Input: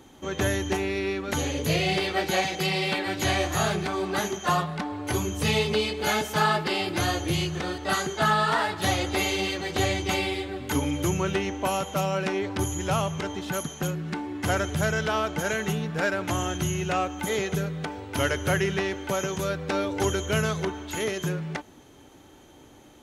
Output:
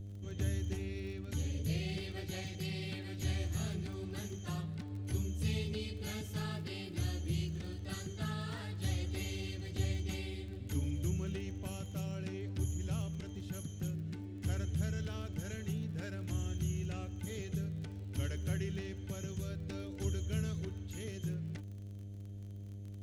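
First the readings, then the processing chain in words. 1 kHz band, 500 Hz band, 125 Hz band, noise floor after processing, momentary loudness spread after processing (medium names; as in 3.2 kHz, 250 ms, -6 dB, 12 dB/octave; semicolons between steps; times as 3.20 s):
-26.5 dB, -18.5 dB, -5.5 dB, -46 dBFS, 7 LU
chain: mains buzz 100 Hz, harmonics 7, -39 dBFS -5 dB/octave; amplifier tone stack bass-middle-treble 10-0-1; crackle 29 per s -52 dBFS; trim +5.5 dB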